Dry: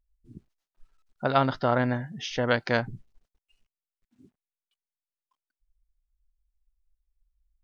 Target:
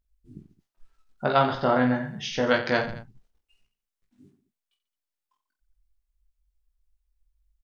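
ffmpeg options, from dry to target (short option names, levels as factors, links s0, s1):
-af "aecho=1:1:20|48|87.2|142.1|218.9:0.631|0.398|0.251|0.158|0.1"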